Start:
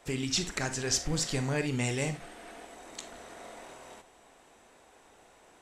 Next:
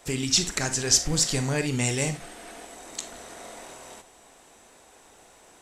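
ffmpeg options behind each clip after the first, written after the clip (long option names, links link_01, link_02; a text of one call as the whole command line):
ffmpeg -i in.wav -af "bass=frequency=250:gain=1,treble=frequency=4000:gain=7,volume=3.5dB" out.wav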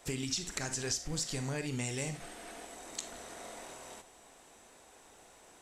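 ffmpeg -i in.wav -af "acompressor=threshold=-28dB:ratio=6,volume=-4.5dB" out.wav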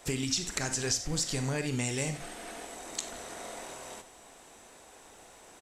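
ffmpeg -i in.wav -filter_complex "[0:a]asplit=2[link_01][link_02];[link_02]adelay=93.29,volume=-17dB,highshelf=frequency=4000:gain=-2.1[link_03];[link_01][link_03]amix=inputs=2:normalize=0,volume=4.5dB" out.wav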